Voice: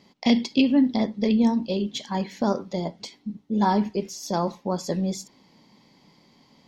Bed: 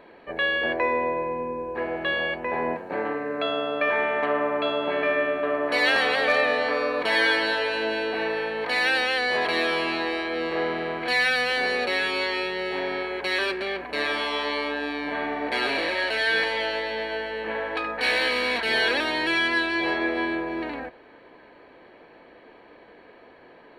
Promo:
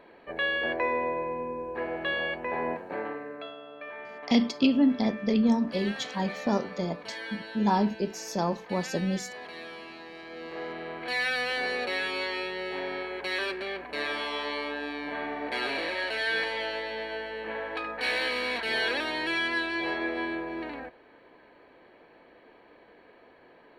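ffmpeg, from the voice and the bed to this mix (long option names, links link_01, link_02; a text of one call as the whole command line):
ffmpeg -i stem1.wav -i stem2.wav -filter_complex "[0:a]adelay=4050,volume=-3dB[link_01];[1:a]volume=8.5dB,afade=type=out:start_time=2.81:duration=0.75:silence=0.199526,afade=type=in:start_time=10.1:duration=1.33:silence=0.237137[link_02];[link_01][link_02]amix=inputs=2:normalize=0" out.wav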